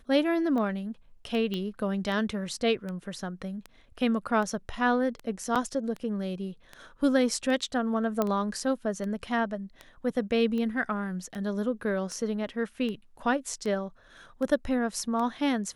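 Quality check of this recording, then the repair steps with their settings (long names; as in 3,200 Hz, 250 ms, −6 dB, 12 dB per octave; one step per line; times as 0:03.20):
scratch tick 78 rpm −24 dBFS
0:01.54: click −20 dBFS
0:05.55–0:05.56: drop-out 6.8 ms
0:08.22: click −13 dBFS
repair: click removal
repair the gap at 0:05.55, 6.8 ms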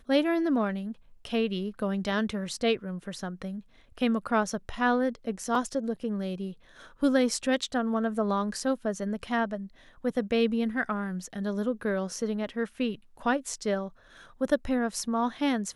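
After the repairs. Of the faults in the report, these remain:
none of them is left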